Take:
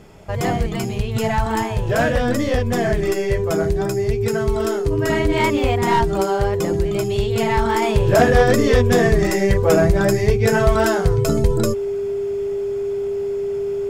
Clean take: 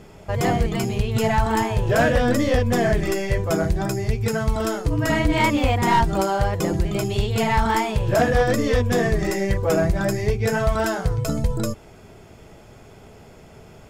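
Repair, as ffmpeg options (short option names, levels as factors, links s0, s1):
-af "bandreject=f=400:w=30,asetnsamples=n=441:p=0,asendcmd='7.82 volume volume -4.5dB',volume=1"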